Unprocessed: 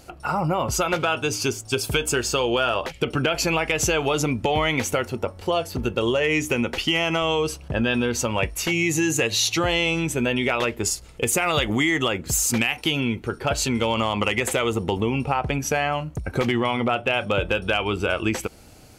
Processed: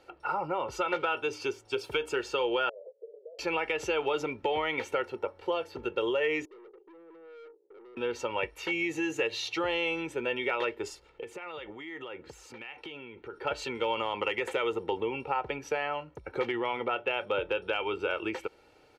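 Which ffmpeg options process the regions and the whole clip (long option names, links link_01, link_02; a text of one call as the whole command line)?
ffmpeg -i in.wav -filter_complex "[0:a]asettb=1/sr,asplit=3[link_01][link_02][link_03];[link_01]atrim=end=2.694[link_04];[link_02]atrim=start=2.69:end=3.39,asetpts=PTS-STARTPTS,afade=type=in:duration=0.004:curve=qsin,afade=type=out:start_time=0.696:duration=0.004:curve=qsin,acompressor=threshold=-29dB:ratio=10:attack=3.2:release=140:knee=1:detection=peak,asuperpass=centerf=520:order=8:qfactor=2.3[link_05];[link_03]atrim=start=3.386[link_06];[link_04][link_05]acrossfade=duration=0.004:curve1=hsin:curve2=qsin[link_07];[link_07][link_06]acrossfade=duration=0.004:curve1=qsin:curve2=hsin,asettb=1/sr,asplit=3[link_08][link_09][link_10];[link_08]atrim=end=6.454[link_11];[link_09]atrim=start=6.45:end=7.97,asetpts=PTS-STARTPTS,afade=type=in:duration=0.004:curve=qsin,afade=type=out:start_time=1.516:duration=0.004:curve=qsin,asuperpass=centerf=400:order=4:qfactor=3.7,aeval=exprs='(tanh(141*val(0)+0.3)-tanh(0.3))/141':channel_layout=same[link_12];[link_10]atrim=start=7.966[link_13];[link_11][link_12]acrossfade=duration=0.004:curve1=hsin:curve2=qsin[link_14];[link_14][link_13]acrossfade=duration=0.004:curve1=qsin:curve2=hsin,asettb=1/sr,asplit=3[link_15][link_16][link_17];[link_15]atrim=end=11.094[link_18];[link_16]atrim=start=11.09:end=13.36,asetpts=PTS-STARTPTS,afade=type=in:duration=0.004:curve=qsin,afade=type=out:start_time=2.266:duration=0.004:curve=qsin,highshelf=frequency=6200:gain=-11.5,acompressor=threshold=-28dB:ratio=10:attack=3.2:release=140:knee=1:detection=peak[link_19];[link_17]atrim=start=13.356[link_20];[link_18][link_19]acrossfade=duration=0.004:curve1=hsin:curve2=qsin[link_21];[link_21][link_20]acrossfade=duration=0.004:curve1=qsin:curve2=hsin,acrossover=split=240 3900:gain=0.141 1 0.1[link_22][link_23][link_24];[link_22][link_23][link_24]amix=inputs=3:normalize=0,aecho=1:1:2.2:0.54,volume=-8dB" out.wav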